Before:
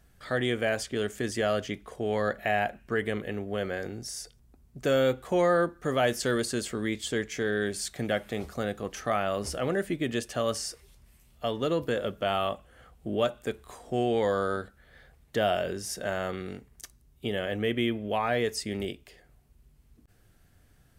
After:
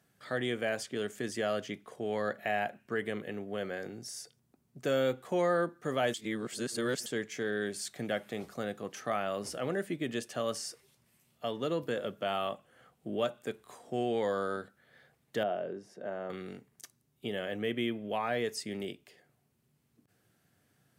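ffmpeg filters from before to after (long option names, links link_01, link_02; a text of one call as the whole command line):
ffmpeg -i in.wav -filter_complex "[0:a]asettb=1/sr,asplit=3[link_01][link_02][link_03];[link_01]atrim=end=15.434[link_04];[link_02]atrim=start=15.43:end=16.3,asetpts=PTS-STARTPTS,afade=type=in:duration=0.004:curve=qsin,afade=type=out:start_time=0.866:duration=0.004:curve=qsin,bandpass=frequency=400:width_type=q:width=0.63[link_05];[link_03]atrim=start=16.296[link_06];[link_04][link_05]acrossfade=duration=0.004:curve1=hsin:curve2=qsin[link_07];[link_07][link_06]acrossfade=duration=0.004:curve1=qsin:curve2=hsin,asplit=3[link_08][link_09][link_10];[link_08]atrim=end=6.142[link_11];[link_09]atrim=start=6.138:end=7.062,asetpts=PTS-STARTPTS,areverse[link_12];[link_10]atrim=start=7.058[link_13];[link_11][link_12]acrossfade=duration=0.004:curve1=hsin:curve2=hsin[link_14];[link_14][link_13]acrossfade=duration=0.004:curve1=hsin:curve2=hsin,highpass=frequency=120:width=0.5412,highpass=frequency=120:width=1.3066,volume=-5dB" out.wav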